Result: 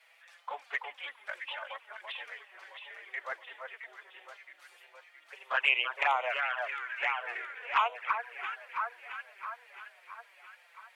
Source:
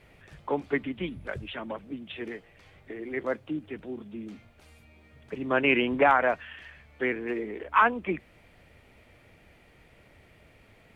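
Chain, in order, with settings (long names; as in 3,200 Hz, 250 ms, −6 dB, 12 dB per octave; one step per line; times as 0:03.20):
Bessel high-pass filter 1,100 Hz, order 8
delay that swaps between a low-pass and a high-pass 334 ms, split 1,600 Hz, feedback 72%, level −4.5 dB
flanger swept by the level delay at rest 6.3 ms, full sweep at −22.5 dBFS
level +3 dB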